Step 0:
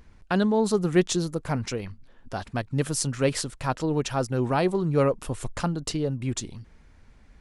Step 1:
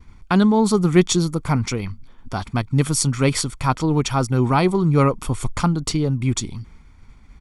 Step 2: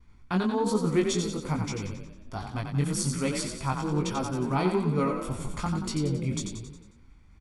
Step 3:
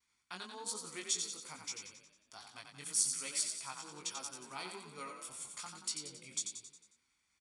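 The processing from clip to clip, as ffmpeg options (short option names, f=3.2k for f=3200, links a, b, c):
-af "agate=range=-33dB:threshold=-49dB:ratio=3:detection=peak,aecho=1:1:0.9:0.5,volume=6dB"
-filter_complex "[0:a]flanger=delay=18.5:depth=3.4:speed=1.2,asplit=7[a][b][c][d][e][f][g];[b]adelay=90,afreqshift=30,volume=-6dB[h];[c]adelay=180,afreqshift=60,volume=-11.7dB[i];[d]adelay=270,afreqshift=90,volume=-17.4dB[j];[e]adelay=360,afreqshift=120,volume=-23dB[k];[f]adelay=450,afreqshift=150,volume=-28.7dB[l];[g]adelay=540,afreqshift=180,volume=-34.4dB[m];[a][h][i][j][k][l][m]amix=inputs=7:normalize=0,volume=-7.5dB"
-af "aresample=22050,aresample=44100,aderivative,volume=1dB"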